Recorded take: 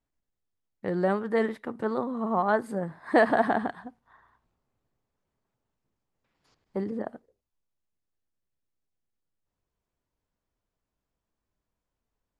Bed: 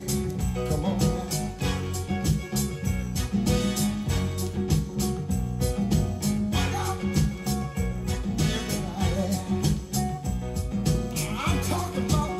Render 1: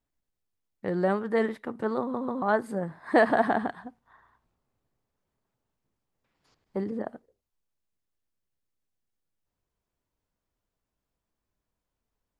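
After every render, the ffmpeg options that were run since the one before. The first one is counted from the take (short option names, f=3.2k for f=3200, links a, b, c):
-filter_complex "[0:a]asplit=4[a][b][c][d];[a]atrim=end=2.142[e];[b]atrim=start=1.998:end=2.142[f];[c]atrim=start=1.998:end=2.142[g];[d]atrim=start=2.418[h];[e][f]acrossfade=d=0.004:c1=hsin:c2=hsin[i];[i][g]acrossfade=d=0.004:c1=hsin:c2=hsin[j];[j][h]acrossfade=d=0.004:c1=hsin:c2=hsin"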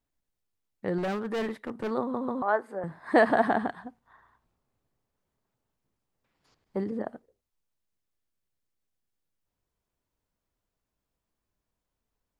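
-filter_complex "[0:a]asettb=1/sr,asplit=3[a][b][c];[a]atrim=end=0.984[d];[b]atrim=start=0.98:end=1.91,asetpts=PTS-STARTPTS,afade=t=in:d=0.004:c=qsin,afade=t=out:st=0.926:d=0.004:c=qsin,asoftclip=type=hard:threshold=-27.5dB[e];[c]atrim=start=1.906[f];[d][e]acrossfade=d=0.004:c1=hsin:c2=qsin[g];[g][f]acrossfade=d=0.004:c1=qsin:c2=hsin,asettb=1/sr,asplit=3[h][i][j];[h]atrim=end=2.424[k];[i]atrim=start=2.42:end=2.84,asetpts=PTS-STARTPTS,afade=t=in:d=0.004:c=qsin,afade=t=out:st=0.416:d=0.004:c=qsin,acrossover=split=370 2400:gain=0.112 1 0.224[l][m][n];[l][m][n]amix=inputs=3:normalize=0[o];[j]atrim=start=2.836[p];[k][o]acrossfade=d=0.004:c1=hsin:c2=qsin[q];[q][p]acrossfade=d=0.004:c1=qsin:c2=hsin"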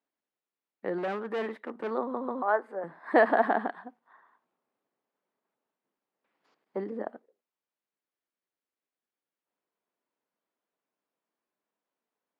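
-af "highpass=f=190:w=0.5412,highpass=f=190:w=1.3066,bass=f=250:g=-8,treble=f=4k:g=-14"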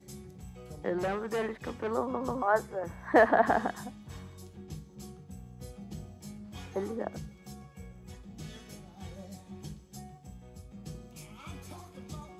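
-filter_complex "[1:a]volume=-19.5dB[a];[0:a][a]amix=inputs=2:normalize=0"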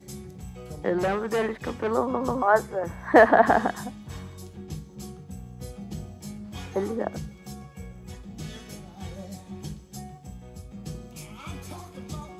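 -af "volume=6.5dB"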